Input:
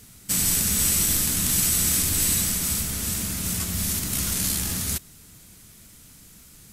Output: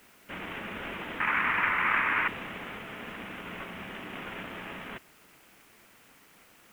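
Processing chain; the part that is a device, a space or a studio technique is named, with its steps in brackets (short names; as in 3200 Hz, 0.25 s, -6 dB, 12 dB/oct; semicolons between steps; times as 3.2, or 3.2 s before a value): army field radio (BPF 390–3300 Hz; CVSD 16 kbps; white noise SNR 21 dB); 1.2–2.28 band shelf 1500 Hz +15 dB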